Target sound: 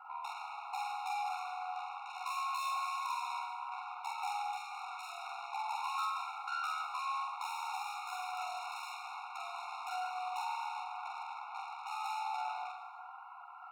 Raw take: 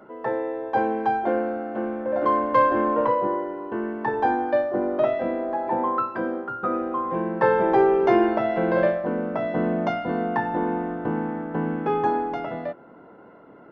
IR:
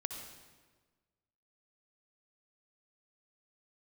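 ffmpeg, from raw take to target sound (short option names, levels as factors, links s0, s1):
-filter_complex "[0:a]aeval=exprs='(tanh(63.1*val(0)+0.6)-tanh(0.6))/63.1':c=same,acompressor=threshold=0.01:ratio=5,aeval=exprs='val(0)*sin(2*PI*37*n/s)':c=same,bandreject=f=121:t=h:w=4,bandreject=f=242:t=h:w=4,bandreject=f=363:t=h:w=4,bandreject=f=484:t=h:w=4,bandreject=f=605:t=h:w=4,bandreject=f=726:t=h:w=4,bandreject=f=847:t=h:w=4,bandreject=f=968:t=h:w=4,bandreject=f=1089:t=h:w=4,bandreject=f=1210:t=h:w=4,bandreject=f=1331:t=h:w=4,bandreject=f=1452:t=h:w=4,bandreject=f=1573:t=h:w=4,bandreject=f=1694:t=h:w=4,bandreject=f=1815:t=h:w=4,bandreject=f=1936:t=h:w=4,bandreject=f=2057:t=h:w=4,bandreject=f=2178:t=h:w=4,bandreject=f=2299:t=h:w=4,bandreject=f=2420:t=h:w=4,asplit=2[s0][s1];[1:a]atrim=start_sample=2205,adelay=46[s2];[s1][s2]afir=irnorm=-1:irlink=0,volume=0.944[s3];[s0][s3]amix=inputs=2:normalize=0,afftfilt=real='re*eq(mod(floor(b*sr/1024/720),2),1)':imag='im*eq(mod(floor(b*sr/1024/720),2),1)':win_size=1024:overlap=0.75,volume=2.66"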